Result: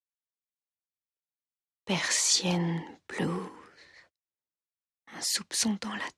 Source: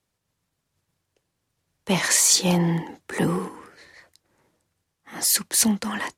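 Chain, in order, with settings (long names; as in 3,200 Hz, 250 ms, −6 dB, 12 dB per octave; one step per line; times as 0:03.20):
low-pass filter 4,800 Hz 12 dB per octave
noise gate −54 dBFS, range −33 dB
high-shelf EQ 3,400 Hz +9.5 dB
level −8 dB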